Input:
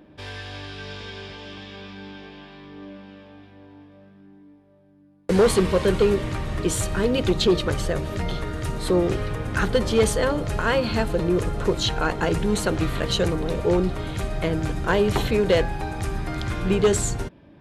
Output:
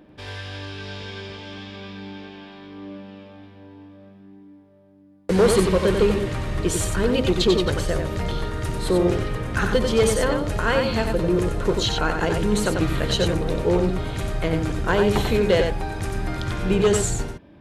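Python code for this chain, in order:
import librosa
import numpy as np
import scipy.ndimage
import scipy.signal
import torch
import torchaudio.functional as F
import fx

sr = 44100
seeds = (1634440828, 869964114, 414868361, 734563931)

y = x + 10.0 ** (-5.0 / 20.0) * np.pad(x, (int(92 * sr / 1000.0), 0))[:len(x)]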